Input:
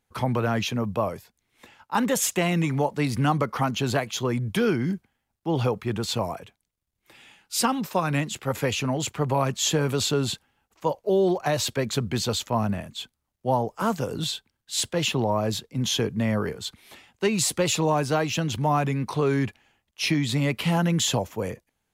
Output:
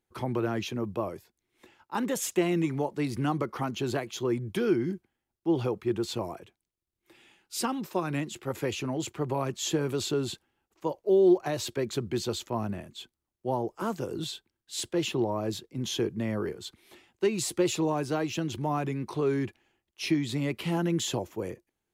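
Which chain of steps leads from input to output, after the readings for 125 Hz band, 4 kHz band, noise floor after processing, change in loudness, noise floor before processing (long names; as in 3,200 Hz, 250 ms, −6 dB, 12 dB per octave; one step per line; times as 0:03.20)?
−7.5 dB, −8.0 dB, below −85 dBFS, −5.0 dB, −79 dBFS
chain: parametric band 350 Hz +13 dB 0.39 octaves
level −8 dB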